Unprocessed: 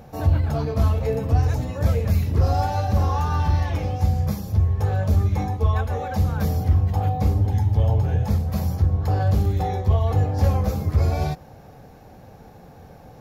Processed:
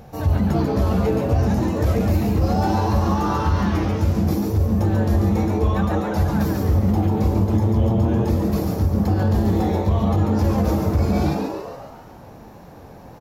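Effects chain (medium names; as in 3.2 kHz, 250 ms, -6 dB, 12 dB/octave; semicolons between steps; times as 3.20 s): de-hum 83.49 Hz, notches 29; wow and flutter 29 cents; frequency-shifting echo 140 ms, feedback 55%, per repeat +120 Hz, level -5 dB; loudness maximiser +11 dB; trim -9 dB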